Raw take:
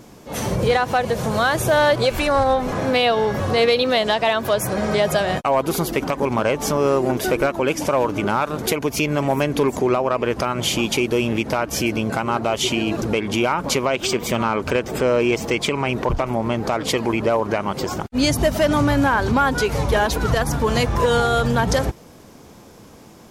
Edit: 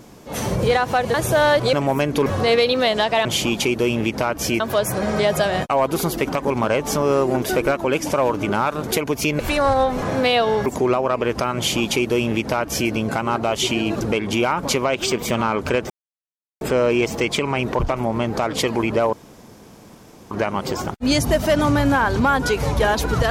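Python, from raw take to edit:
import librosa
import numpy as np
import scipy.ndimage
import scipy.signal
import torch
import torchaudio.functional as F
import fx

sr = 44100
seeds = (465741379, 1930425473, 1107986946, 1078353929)

y = fx.edit(x, sr, fx.cut(start_s=1.14, length_s=0.36),
    fx.swap(start_s=2.09, length_s=1.27, other_s=9.14, other_length_s=0.53),
    fx.duplicate(start_s=10.57, length_s=1.35, to_s=4.35),
    fx.insert_silence(at_s=14.91, length_s=0.71),
    fx.insert_room_tone(at_s=17.43, length_s=1.18), tone=tone)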